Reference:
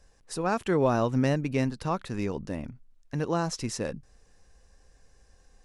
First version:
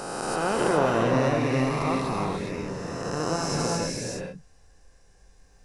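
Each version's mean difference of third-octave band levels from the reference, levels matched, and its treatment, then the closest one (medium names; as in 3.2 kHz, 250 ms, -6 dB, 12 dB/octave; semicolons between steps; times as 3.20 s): 10.0 dB: reverse spectral sustain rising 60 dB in 2.39 s; gated-style reverb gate 450 ms rising, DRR -0.5 dB; trim -4 dB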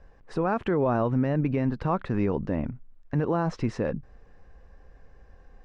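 5.5 dB: low-pass 1.8 kHz 12 dB/octave; peak limiter -23.5 dBFS, peak gain reduction 10.5 dB; trim +7.5 dB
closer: second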